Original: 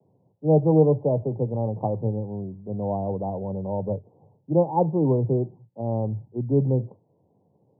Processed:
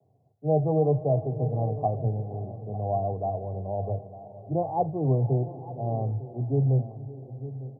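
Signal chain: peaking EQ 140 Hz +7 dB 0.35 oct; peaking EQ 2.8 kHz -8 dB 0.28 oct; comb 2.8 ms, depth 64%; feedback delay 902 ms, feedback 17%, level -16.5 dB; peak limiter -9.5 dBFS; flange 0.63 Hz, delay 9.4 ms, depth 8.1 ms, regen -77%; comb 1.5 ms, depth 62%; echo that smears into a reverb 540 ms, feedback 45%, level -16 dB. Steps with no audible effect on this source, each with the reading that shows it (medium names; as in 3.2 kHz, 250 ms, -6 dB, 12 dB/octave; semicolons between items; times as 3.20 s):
peaking EQ 2.8 kHz: input has nothing above 1 kHz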